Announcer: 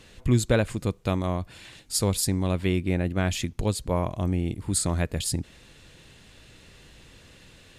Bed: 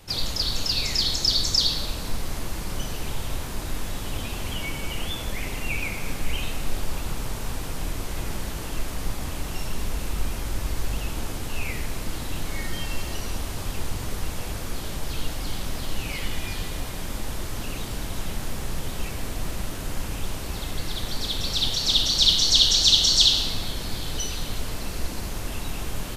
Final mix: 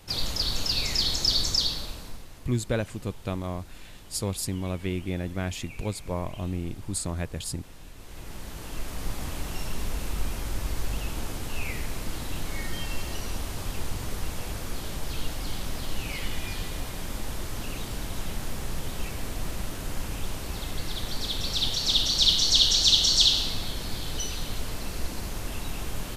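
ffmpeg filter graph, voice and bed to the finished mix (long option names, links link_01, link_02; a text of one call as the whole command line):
ffmpeg -i stem1.wav -i stem2.wav -filter_complex "[0:a]adelay=2200,volume=-5.5dB[link_01];[1:a]volume=12.5dB,afade=type=out:start_time=1.41:duration=0.86:silence=0.177828,afade=type=in:start_time=7.95:duration=1.26:silence=0.188365[link_02];[link_01][link_02]amix=inputs=2:normalize=0" out.wav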